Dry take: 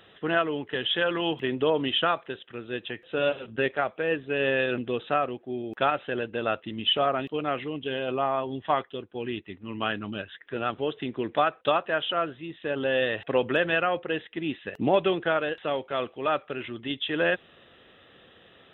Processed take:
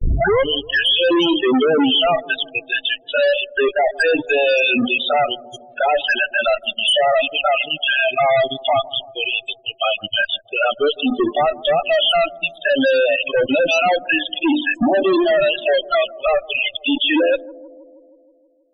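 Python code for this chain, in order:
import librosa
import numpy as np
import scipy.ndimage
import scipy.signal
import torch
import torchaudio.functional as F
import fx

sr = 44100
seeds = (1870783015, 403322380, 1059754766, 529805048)

p1 = fx.tape_start_head(x, sr, length_s=0.5)
p2 = fx.noise_reduce_blind(p1, sr, reduce_db=23)
p3 = fx.peak_eq(p2, sr, hz=71.0, db=-11.0, octaves=0.25)
p4 = fx.hum_notches(p3, sr, base_hz=50, count=7)
p5 = fx.level_steps(p4, sr, step_db=18)
p6 = p4 + F.gain(torch.from_numpy(p5), 2.0).numpy()
p7 = fx.env_flanger(p6, sr, rest_ms=2.7, full_db=-23.5)
p8 = fx.fuzz(p7, sr, gain_db=44.0, gate_db=-51.0)
p9 = fx.spec_topn(p8, sr, count=16)
y = p9 + fx.echo_bbd(p9, sr, ms=159, stages=1024, feedback_pct=66, wet_db=-20.0, dry=0)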